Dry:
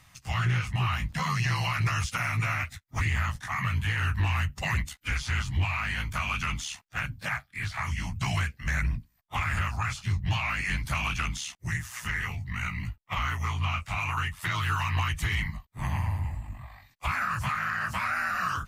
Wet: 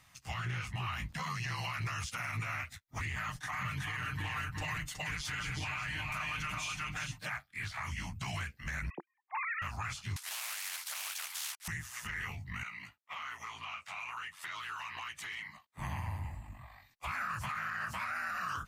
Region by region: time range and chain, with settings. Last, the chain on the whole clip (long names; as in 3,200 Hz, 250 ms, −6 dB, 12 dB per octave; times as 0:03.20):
0:03.16–0:07.30: comb filter 6.6 ms, depth 89% + single-tap delay 370 ms −3.5 dB
0:08.90–0:09.62: three sine waves on the formant tracks + loudspeaker in its box 330–2,500 Hz, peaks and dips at 340 Hz +9 dB, 620 Hz −9 dB, 900 Hz +4 dB, 1,400 Hz −7 dB, 2,000 Hz +4 dB
0:10.16–0:11.68: variable-slope delta modulation 64 kbit/s + high-pass filter 1,400 Hz 24 dB per octave + every bin compressed towards the loudest bin 4 to 1
0:12.63–0:15.78: meter weighting curve A + downward compressor 2.5 to 1, threshold −37 dBFS
whole clip: low-shelf EQ 160 Hz −6.5 dB; brickwall limiter −24.5 dBFS; level −4.5 dB